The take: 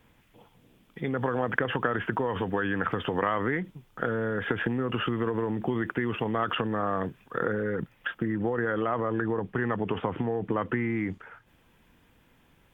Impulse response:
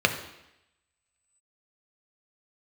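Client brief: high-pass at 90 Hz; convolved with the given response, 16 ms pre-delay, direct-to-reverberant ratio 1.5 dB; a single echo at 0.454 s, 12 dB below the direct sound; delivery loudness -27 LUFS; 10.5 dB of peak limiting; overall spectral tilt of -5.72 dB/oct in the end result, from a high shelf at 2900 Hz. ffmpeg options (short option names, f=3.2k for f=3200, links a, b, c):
-filter_complex "[0:a]highpass=90,highshelf=f=2.9k:g=-6.5,alimiter=limit=-19.5dB:level=0:latency=1,aecho=1:1:454:0.251,asplit=2[a][b];[1:a]atrim=start_sample=2205,adelay=16[c];[b][c]afir=irnorm=-1:irlink=0,volume=-17.5dB[d];[a][d]amix=inputs=2:normalize=0,volume=2dB"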